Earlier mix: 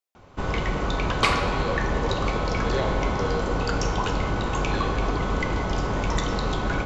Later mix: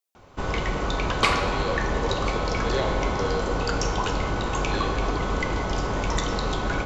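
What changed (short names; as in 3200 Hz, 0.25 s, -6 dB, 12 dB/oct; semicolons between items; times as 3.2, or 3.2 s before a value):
speech: add high shelf 4500 Hz +7.5 dB; first sound: add tone controls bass -6 dB, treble +3 dB; master: add low shelf 160 Hz +5.5 dB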